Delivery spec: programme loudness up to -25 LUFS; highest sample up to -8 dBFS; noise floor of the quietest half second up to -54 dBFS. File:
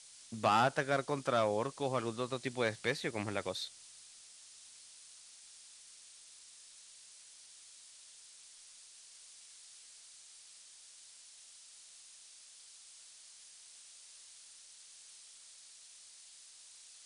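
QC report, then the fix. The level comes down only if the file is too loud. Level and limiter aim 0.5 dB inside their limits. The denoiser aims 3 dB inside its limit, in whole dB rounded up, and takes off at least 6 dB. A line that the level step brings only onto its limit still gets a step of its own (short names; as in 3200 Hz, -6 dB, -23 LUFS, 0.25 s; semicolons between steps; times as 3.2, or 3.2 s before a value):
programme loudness -34.5 LUFS: OK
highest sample -16.5 dBFS: OK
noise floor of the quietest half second -57 dBFS: OK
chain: none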